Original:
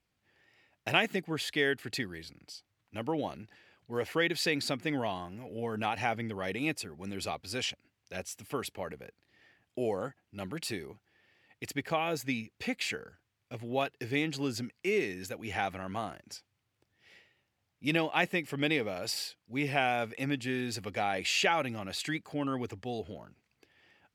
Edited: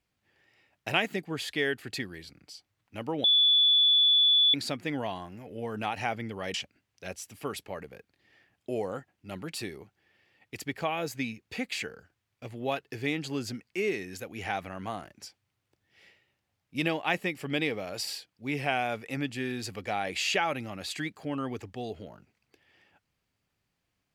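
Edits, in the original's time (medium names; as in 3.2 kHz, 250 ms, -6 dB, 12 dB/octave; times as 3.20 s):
3.24–4.54 s: bleep 3.45 kHz -18.5 dBFS
6.54–7.63 s: delete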